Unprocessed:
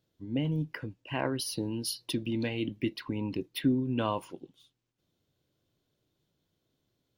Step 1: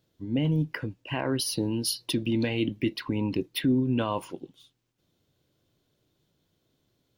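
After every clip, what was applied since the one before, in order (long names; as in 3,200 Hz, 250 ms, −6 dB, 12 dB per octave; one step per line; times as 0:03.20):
brickwall limiter −22 dBFS, peak gain reduction 6.5 dB
level +5.5 dB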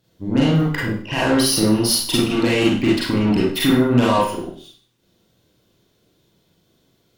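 harmonic generator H 6 −27 dB, 8 −19 dB, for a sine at −16 dBFS
four-comb reverb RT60 0.48 s, combs from 33 ms, DRR −5.5 dB
level +5 dB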